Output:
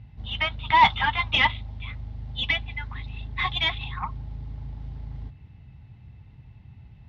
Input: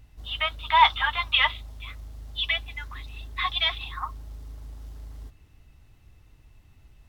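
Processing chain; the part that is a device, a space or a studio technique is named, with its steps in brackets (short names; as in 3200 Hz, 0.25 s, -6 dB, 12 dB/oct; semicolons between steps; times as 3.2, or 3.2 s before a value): guitar amplifier (tube stage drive 15 dB, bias 0.5; tone controls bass +15 dB, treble +1 dB; speaker cabinet 100–4100 Hz, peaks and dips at 130 Hz +4 dB, 200 Hz +4 dB, 310 Hz -4 dB, 850 Hz +8 dB, 1200 Hz -3 dB, 2100 Hz +4 dB); gain +1.5 dB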